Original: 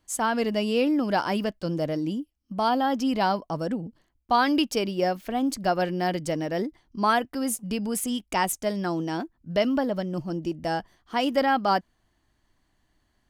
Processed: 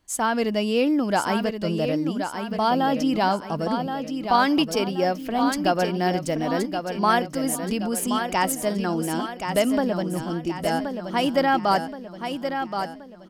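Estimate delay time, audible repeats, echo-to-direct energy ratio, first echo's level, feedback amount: 1,075 ms, 5, −6.0 dB, −7.0 dB, 46%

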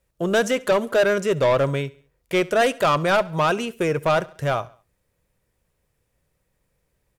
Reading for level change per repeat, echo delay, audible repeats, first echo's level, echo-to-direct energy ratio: −7.0 dB, 69 ms, 2, −21.5 dB, −20.5 dB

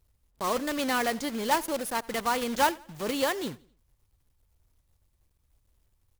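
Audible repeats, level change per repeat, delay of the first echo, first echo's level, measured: 2, −7.5 dB, 86 ms, −23.0 dB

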